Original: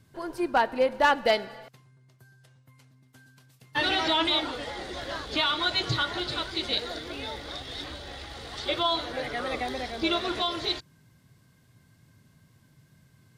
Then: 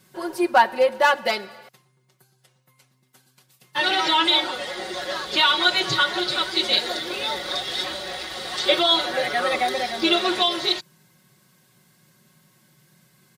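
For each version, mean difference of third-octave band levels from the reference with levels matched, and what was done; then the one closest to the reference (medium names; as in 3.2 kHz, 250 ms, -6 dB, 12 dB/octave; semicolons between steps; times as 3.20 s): 4.5 dB: high-pass 350 Hz 6 dB/octave; treble shelf 9.6 kHz +7 dB; comb 5.4 ms, depth 91%; gain riding within 4 dB 2 s; trim +4.5 dB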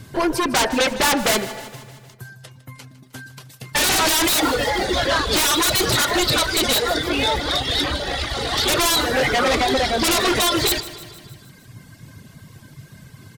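7.5 dB: de-hum 82.32 Hz, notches 33; reverb removal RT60 1.2 s; in parallel at -4 dB: sine folder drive 19 dB, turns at -12 dBFS; on the sum: feedback delay 155 ms, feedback 60%, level -16 dB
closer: first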